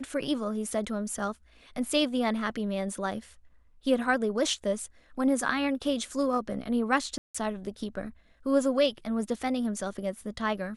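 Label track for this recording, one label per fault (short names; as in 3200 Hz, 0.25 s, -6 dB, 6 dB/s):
7.180000	7.340000	gap 0.165 s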